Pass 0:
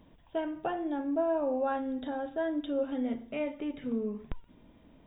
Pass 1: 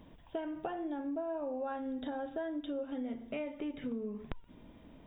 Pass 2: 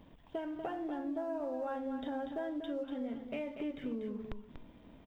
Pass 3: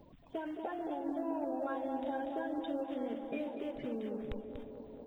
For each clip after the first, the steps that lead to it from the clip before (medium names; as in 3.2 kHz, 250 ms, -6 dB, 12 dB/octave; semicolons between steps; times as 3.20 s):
compression, threshold -38 dBFS, peak gain reduction 12.5 dB; trim +2.5 dB
waveshaping leveller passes 1; on a send: delay 240 ms -8 dB; on the sum: trim -4.5 dB
coarse spectral quantiser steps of 30 dB; feedback echo behind a band-pass 219 ms, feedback 79%, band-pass 500 Hz, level -7.5 dB